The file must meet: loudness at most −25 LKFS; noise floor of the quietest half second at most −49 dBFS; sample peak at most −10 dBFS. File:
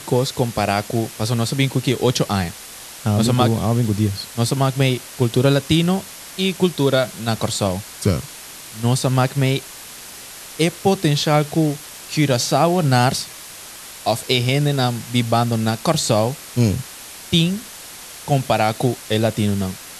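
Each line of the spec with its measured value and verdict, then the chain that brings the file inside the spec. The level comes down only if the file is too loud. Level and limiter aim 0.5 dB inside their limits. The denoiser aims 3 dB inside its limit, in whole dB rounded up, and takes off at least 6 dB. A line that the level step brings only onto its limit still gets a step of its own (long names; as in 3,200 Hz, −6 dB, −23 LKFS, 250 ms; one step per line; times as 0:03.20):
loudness −19.5 LKFS: out of spec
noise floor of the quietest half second −37 dBFS: out of spec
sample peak −3.5 dBFS: out of spec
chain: broadband denoise 9 dB, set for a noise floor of −37 dBFS
level −6 dB
brickwall limiter −10.5 dBFS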